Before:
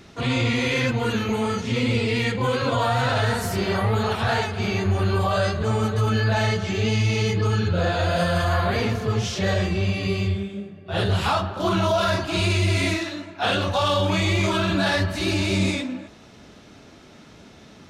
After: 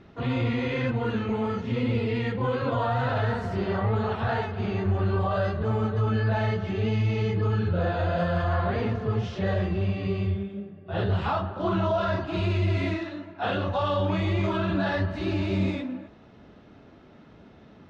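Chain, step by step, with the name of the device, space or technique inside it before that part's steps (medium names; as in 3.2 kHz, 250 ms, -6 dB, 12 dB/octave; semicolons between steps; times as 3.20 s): phone in a pocket (low-pass 3.5 kHz 12 dB/octave; treble shelf 2.1 kHz -9 dB); band-stop 2.3 kHz, Q 19; trim -3 dB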